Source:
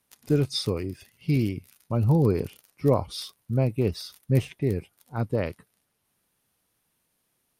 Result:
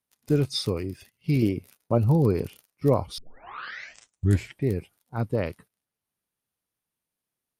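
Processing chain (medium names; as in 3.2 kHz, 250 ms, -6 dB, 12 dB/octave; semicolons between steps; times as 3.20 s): gate -50 dBFS, range -13 dB; 1.42–1.98 s: peaking EQ 500 Hz +9 dB 1.9 oct; 3.18 s: tape start 1.49 s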